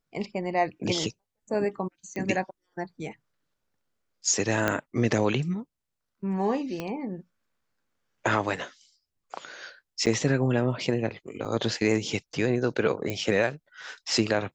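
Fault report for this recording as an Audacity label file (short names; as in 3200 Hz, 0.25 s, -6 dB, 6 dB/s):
2.160000	2.160000	pop -22 dBFS
4.680000	4.680000	pop -10 dBFS
6.800000	6.800000	pop -18 dBFS
10.060000	10.070000	gap 7.5 ms
11.450000	11.450000	gap 3.6 ms
13.100000	13.100000	pop -15 dBFS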